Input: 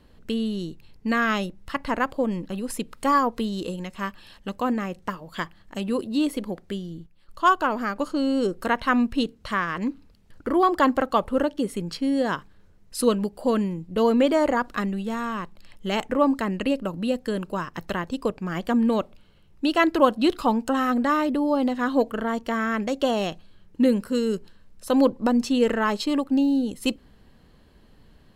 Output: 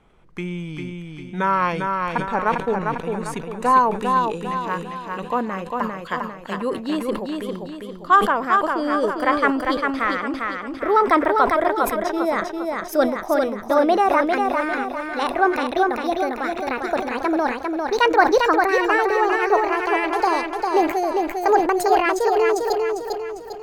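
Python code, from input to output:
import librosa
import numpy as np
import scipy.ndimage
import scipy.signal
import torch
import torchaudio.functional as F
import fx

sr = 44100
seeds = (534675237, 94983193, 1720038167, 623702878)

p1 = fx.speed_glide(x, sr, from_pct=77, to_pct=163)
p2 = fx.graphic_eq_10(p1, sr, hz=(500, 1000, 2000), db=(6, 8, 5))
p3 = p2 + fx.echo_feedback(p2, sr, ms=400, feedback_pct=44, wet_db=-4, dry=0)
p4 = fx.sustainer(p3, sr, db_per_s=95.0)
y = p4 * librosa.db_to_amplitude(-4.5)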